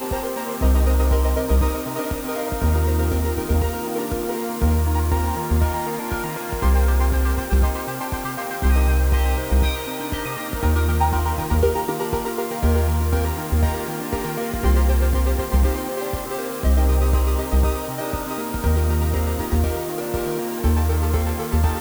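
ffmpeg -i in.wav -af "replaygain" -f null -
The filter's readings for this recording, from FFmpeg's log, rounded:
track_gain = +8.2 dB
track_peak = 0.364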